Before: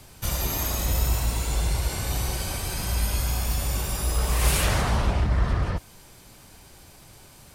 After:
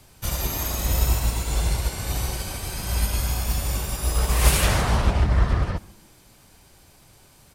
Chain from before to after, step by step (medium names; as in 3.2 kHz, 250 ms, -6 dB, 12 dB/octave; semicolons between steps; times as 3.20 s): on a send: frequency-shifting echo 137 ms, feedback 36%, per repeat -130 Hz, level -18.5 dB; on the sum: upward expansion 1.5:1, over -34 dBFS; trim +5 dB